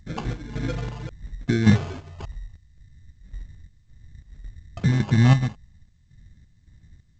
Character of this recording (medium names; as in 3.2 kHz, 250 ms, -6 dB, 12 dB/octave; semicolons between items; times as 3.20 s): phasing stages 4, 0.32 Hz, lowest notch 390–1500 Hz; chopped level 1.8 Hz, depth 60%, duty 60%; aliases and images of a low sample rate 1.9 kHz, jitter 0%; G.722